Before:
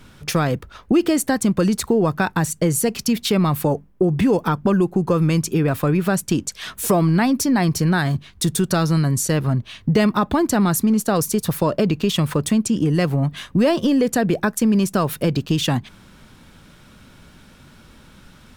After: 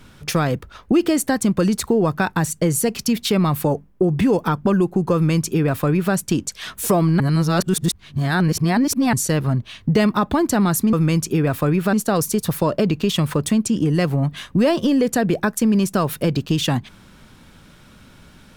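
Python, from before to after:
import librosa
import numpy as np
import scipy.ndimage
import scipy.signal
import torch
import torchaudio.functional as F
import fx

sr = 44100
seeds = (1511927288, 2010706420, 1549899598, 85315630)

y = fx.edit(x, sr, fx.duplicate(start_s=5.14, length_s=1.0, to_s=10.93),
    fx.reverse_span(start_s=7.2, length_s=1.93), tone=tone)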